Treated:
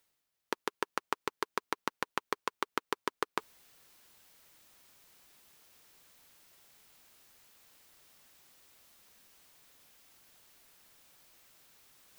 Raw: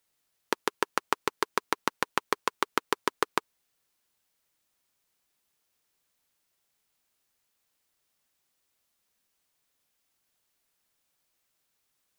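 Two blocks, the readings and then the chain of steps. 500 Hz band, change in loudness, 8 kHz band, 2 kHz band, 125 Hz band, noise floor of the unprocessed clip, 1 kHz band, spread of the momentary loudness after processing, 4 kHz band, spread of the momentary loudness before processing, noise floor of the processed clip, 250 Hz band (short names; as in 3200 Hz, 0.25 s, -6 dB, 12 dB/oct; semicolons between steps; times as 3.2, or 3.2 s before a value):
-6.5 dB, -6.5 dB, -8.0 dB, -6.5 dB, -6.5 dB, -78 dBFS, -6.5 dB, 3 LU, -7.0 dB, 3 LU, -85 dBFS, -6.5 dB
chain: bell 9200 Hz -2.5 dB 1.4 oct; reverse; upward compressor, threshold -37 dBFS; reverse; gain -6.5 dB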